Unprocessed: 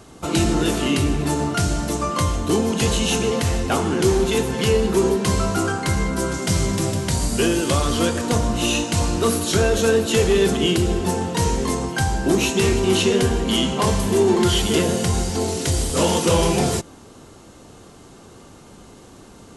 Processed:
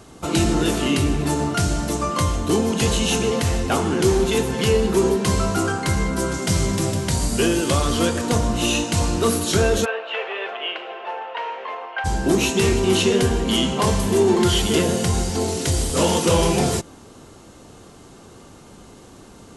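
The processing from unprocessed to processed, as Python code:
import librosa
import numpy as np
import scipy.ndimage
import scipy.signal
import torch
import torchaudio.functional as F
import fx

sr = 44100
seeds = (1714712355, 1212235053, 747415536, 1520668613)

y = fx.ellip_bandpass(x, sr, low_hz=580.0, high_hz=2800.0, order=3, stop_db=80, at=(9.84, 12.04), fade=0.02)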